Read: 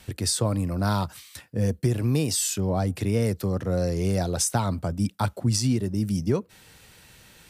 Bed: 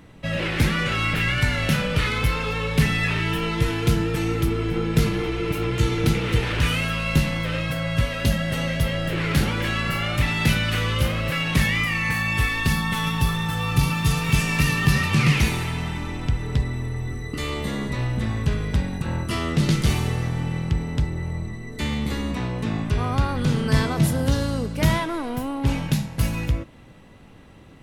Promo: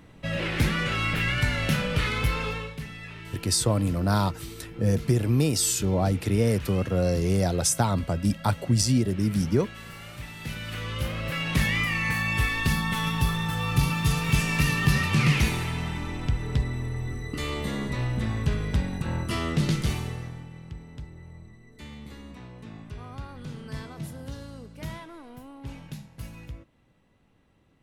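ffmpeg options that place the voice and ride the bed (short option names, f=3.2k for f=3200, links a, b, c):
-filter_complex "[0:a]adelay=3250,volume=1dB[a];[1:a]volume=11.5dB,afade=t=out:st=2.46:d=0.3:silence=0.188365,afade=t=in:st=10.39:d=1.37:silence=0.177828,afade=t=out:st=19.47:d=1.01:silence=0.199526[b];[a][b]amix=inputs=2:normalize=0"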